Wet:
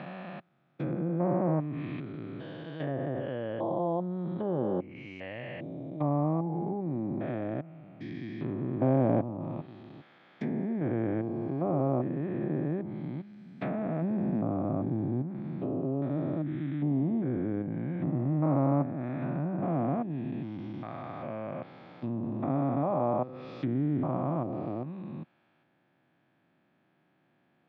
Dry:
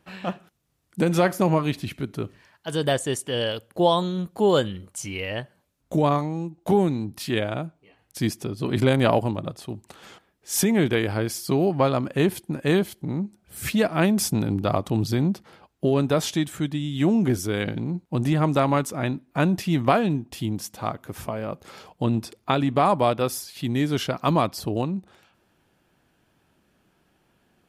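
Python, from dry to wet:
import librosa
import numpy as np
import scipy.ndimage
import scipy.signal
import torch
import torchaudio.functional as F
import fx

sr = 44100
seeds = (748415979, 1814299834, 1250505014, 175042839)

y = fx.spec_steps(x, sr, hold_ms=400)
y = fx.env_lowpass_down(y, sr, base_hz=930.0, full_db=-24.5)
y = fx.cabinet(y, sr, low_hz=130.0, low_slope=24, high_hz=3200.0, hz=(200.0, 440.0, 950.0, 1400.0, 2900.0), db=(-5, -9, -4, -5, -8))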